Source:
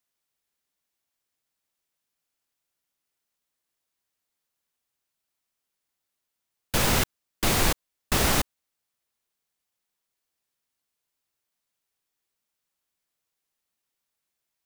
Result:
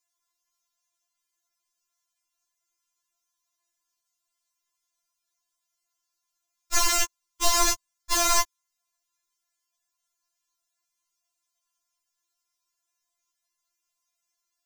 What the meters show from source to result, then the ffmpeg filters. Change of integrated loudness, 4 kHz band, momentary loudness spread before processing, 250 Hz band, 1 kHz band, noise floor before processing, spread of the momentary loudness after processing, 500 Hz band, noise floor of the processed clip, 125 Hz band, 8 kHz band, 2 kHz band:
+1.0 dB, +1.5 dB, 9 LU, -9.5 dB, +3.0 dB, -83 dBFS, 10 LU, -3.0 dB, -83 dBFS, under -15 dB, +5.5 dB, -1.5 dB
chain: -af "equalizer=f=400:t=o:w=0.67:g=-11,equalizer=f=1k:t=o:w=0.67:g=9,equalizer=f=6.3k:t=o:w=0.67:g=11,afftfilt=real='re*4*eq(mod(b,16),0)':imag='im*4*eq(mod(b,16),0)':win_size=2048:overlap=0.75"

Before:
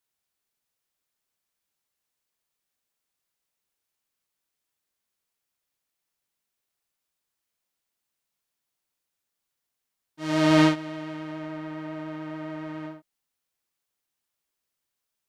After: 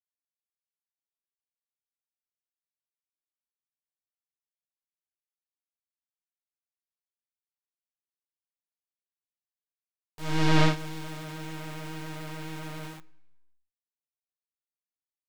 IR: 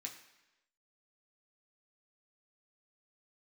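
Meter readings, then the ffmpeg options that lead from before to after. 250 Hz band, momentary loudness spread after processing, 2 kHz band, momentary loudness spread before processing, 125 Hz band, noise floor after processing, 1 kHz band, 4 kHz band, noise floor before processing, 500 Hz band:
-7.0 dB, 17 LU, -2.0 dB, 17 LU, +2.0 dB, under -85 dBFS, -2.0 dB, -1.0 dB, -84 dBFS, -6.0 dB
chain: -filter_complex "[0:a]aeval=exprs='abs(val(0))':c=same,acrusher=bits=5:dc=4:mix=0:aa=0.000001,acrossover=split=5700[a][b];[b]acompressor=threshold=-49dB:ratio=4:attack=1:release=60[c];[a][c]amix=inputs=2:normalize=0,asplit=2[d][e];[1:a]atrim=start_sample=2205,lowshelf=f=190:g=10[f];[e][f]afir=irnorm=-1:irlink=0,volume=-9dB[g];[d][g]amix=inputs=2:normalize=0"

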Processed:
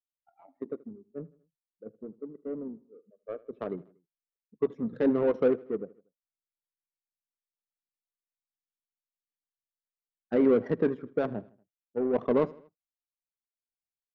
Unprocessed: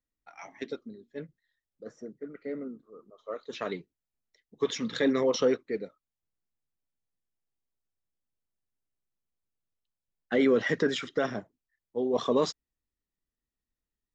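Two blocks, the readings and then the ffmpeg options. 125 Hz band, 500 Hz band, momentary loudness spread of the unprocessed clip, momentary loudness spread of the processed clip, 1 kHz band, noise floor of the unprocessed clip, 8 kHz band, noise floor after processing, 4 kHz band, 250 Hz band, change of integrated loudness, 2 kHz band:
+1.5 dB, +0.5 dB, 22 LU, 19 LU, -2.5 dB, under -85 dBFS, n/a, under -85 dBFS, under -20 dB, +1.0 dB, +0.5 dB, -9.5 dB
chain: -af "afftdn=nr=26:nf=-43,equalizer=f=2.9k:w=0.8:g=-9.5,adynamicsmooth=sensitivity=1:basefreq=540,aecho=1:1:79|158|237:0.0841|0.0412|0.0202,volume=1.5dB"

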